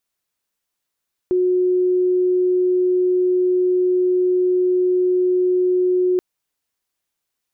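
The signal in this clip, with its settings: tone sine 364 Hz -14 dBFS 4.88 s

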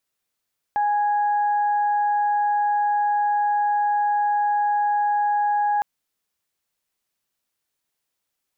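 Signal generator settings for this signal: steady additive tone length 5.06 s, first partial 828 Hz, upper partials -15 dB, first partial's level -18 dB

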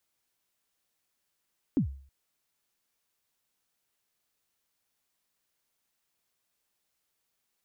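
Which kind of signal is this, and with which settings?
kick drum length 0.32 s, from 320 Hz, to 68 Hz, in 0.103 s, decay 0.48 s, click off, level -19 dB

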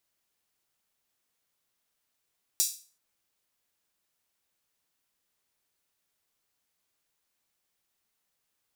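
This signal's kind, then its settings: open hi-hat length 0.38 s, high-pass 5600 Hz, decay 0.38 s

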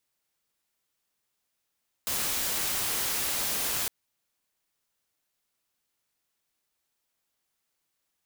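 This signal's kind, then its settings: noise white, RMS -29.5 dBFS 1.81 s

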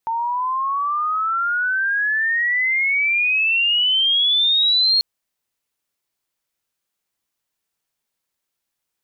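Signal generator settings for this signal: chirp logarithmic 900 Hz -> 4300 Hz -19.5 dBFS -> -13 dBFS 4.94 s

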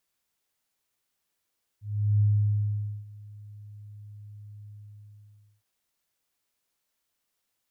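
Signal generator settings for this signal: ADSR sine 104 Hz, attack 0.388 s, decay 0.849 s, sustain -24 dB, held 2.86 s, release 0.955 s -18 dBFS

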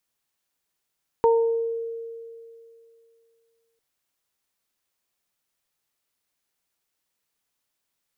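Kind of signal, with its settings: additive tone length 2.55 s, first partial 459 Hz, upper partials -3.5 dB, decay 2.62 s, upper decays 0.58 s, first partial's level -14.5 dB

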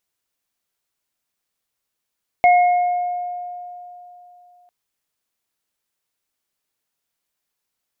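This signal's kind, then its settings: sine partials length 2.25 s, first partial 713 Hz, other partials 2160 Hz, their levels -8.5 dB, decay 3.17 s, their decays 1.27 s, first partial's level -8.5 dB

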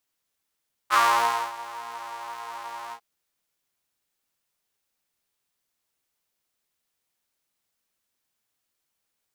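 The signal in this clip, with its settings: synth patch with pulse-width modulation A#2, interval +12 st, detune 21 cents, filter highpass, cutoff 850 Hz, Q 5.2, filter envelope 0.5 oct, filter sustain 30%, attack 38 ms, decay 0.58 s, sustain -20 dB, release 0.08 s, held 2.02 s, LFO 1.8 Hz, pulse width 47%, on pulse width 8%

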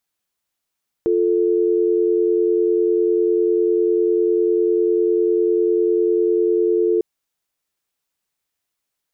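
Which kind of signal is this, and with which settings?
call progress tone dial tone, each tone -17 dBFS 5.95 s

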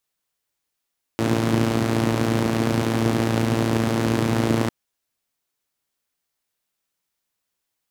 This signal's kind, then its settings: four-cylinder engine model, steady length 3.50 s, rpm 3400, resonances 140/250 Hz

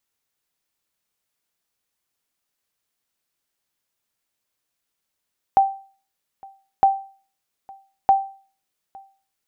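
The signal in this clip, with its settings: sonar ping 781 Hz, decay 0.41 s, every 1.26 s, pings 3, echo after 0.86 s, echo -26.5 dB -7.5 dBFS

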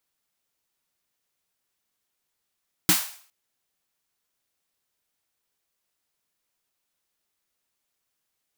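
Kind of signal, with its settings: snare drum length 0.41 s, tones 180 Hz, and 310 Hz, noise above 710 Hz, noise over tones 2.5 dB, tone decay 0.13 s, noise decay 0.49 s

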